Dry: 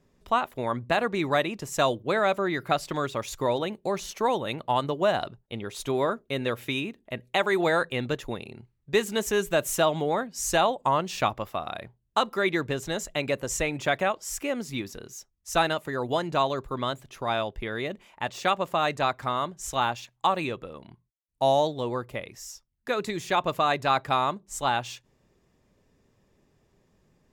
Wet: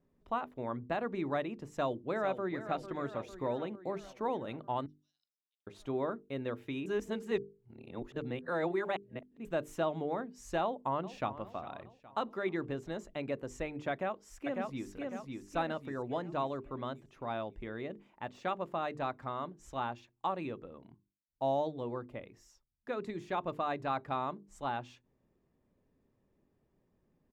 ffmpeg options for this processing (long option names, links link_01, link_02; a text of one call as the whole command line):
ffmpeg -i in.wav -filter_complex "[0:a]asplit=2[link_01][link_02];[link_02]afade=type=in:start_time=1.7:duration=0.01,afade=type=out:start_time=2.58:duration=0.01,aecho=0:1:450|900|1350|1800|2250|2700|3150|3600:0.281838|0.183195|0.119077|0.0773998|0.0503099|0.0327014|0.0212559|0.0138164[link_03];[link_01][link_03]amix=inputs=2:normalize=0,asettb=1/sr,asplit=3[link_04][link_05][link_06];[link_04]atrim=end=4.864[link_07];[link_05]atrim=start=4.86:end=5.67,asetpts=PTS-STARTPTS,afade=type=in:duration=0.004:curve=qsin,afade=type=out:start_time=0.806:duration=0.004:curve=qsin,asuperpass=centerf=5300:order=4:qfactor=6.9[link_08];[link_06]atrim=start=5.666[link_09];[link_07][link_08]acrossfade=duration=0.004:curve1=hsin:curve2=qsin[link_10];[link_10][link_09]acrossfade=duration=0.004:curve1=qsin:curve2=hsin,asplit=2[link_11][link_12];[link_12]afade=type=in:start_time=10.62:duration=0.01,afade=type=out:start_time=11.42:duration=0.01,aecho=0:1:410|820|1230|1640|2050:0.16788|0.0839402|0.0419701|0.0209851|0.0104925[link_13];[link_11][link_13]amix=inputs=2:normalize=0,asplit=2[link_14][link_15];[link_15]afade=type=in:start_time=13.91:duration=0.01,afade=type=out:start_time=14.87:duration=0.01,aecho=0:1:550|1100|1650|2200|2750|3300:0.707946|0.318576|0.143359|0.0645116|0.0290302|0.0130636[link_16];[link_14][link_16]amix=inputs=2:normalize=0,asplit=3[link_17][link_18][link_19];[link_17]atrim=end=6.862[link_20];[link_18]atrim=start=6.858:end=9.452,asetpts=PTS-STARTPTS,areverse[link_21];[link_19]atrim=start=9.448[link_22];[link_20][link_21]acrossfade=duration=0.004:curve1=hsin:curve2=hsin[link_23];[link_23][link_22]acrossfade=duration=0.004:curve1=hsin:curve2=hsin,lowpass=frequency=1300:poles=1,equalizer=frequency=270:width=1.7:gain=4.5,bandreject=frequency=50:width_type=h:width=6,bandreject=frequency=100:width_type=h:width=6,bandreject=frequency=150:width_type=h:width=6,bandreject=frequency=200:width_type=h:width=6,bandreject=frequency=250:width_type=h:width=6,bandreject=frequency=300:width_type=h:width=6,bandreject=frequency=350:width_type=h:width=6,bandreject=frequency=400:width_type=h:width=6,bandreject=frequency=450:width_type=h:width=6,volume=-9dB" out.wav